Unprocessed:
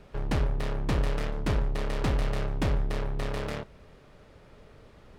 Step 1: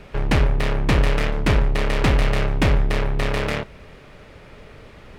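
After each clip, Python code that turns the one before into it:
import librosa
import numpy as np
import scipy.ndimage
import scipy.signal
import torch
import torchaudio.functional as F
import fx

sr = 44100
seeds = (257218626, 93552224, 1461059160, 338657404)

y = fx.peak_eq(x, sr, hz=2300.0, db=6.0, octaves=0.97)
y = y * 10.0 ** (9.0 / 20.0)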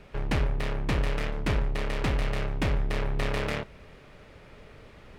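y = fx.rider(x, sr, range_db=10, speed_s=0.5)
y = y * 10.0 ** (-8.5 / 20.0)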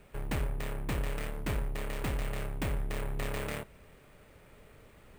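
y = np.repeat(x[::4], 4)[:len(x)]
y = y * 10.0 ** (-6.5 / 20.0)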